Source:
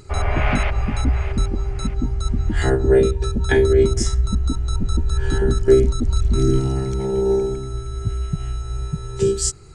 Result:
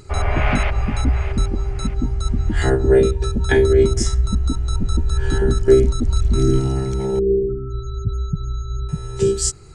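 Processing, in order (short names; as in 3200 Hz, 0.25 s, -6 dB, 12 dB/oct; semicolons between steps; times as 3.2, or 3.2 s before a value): 7.19–8.89 loudest bins only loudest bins 16; gain +1 dB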